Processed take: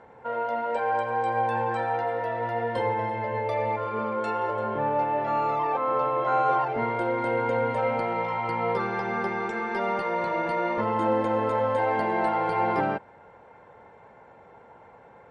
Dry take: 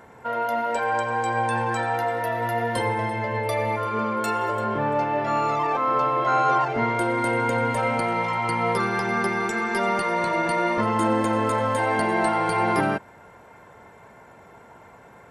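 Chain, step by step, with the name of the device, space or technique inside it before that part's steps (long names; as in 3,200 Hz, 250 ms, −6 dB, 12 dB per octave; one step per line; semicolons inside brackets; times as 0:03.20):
inside a cardboard box (low-pass filter 3,700 Hz 12 dB per octave; hollow resonant body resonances 510/820 Hz, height 8 dB, ringing for 25 ms)
level −6 dB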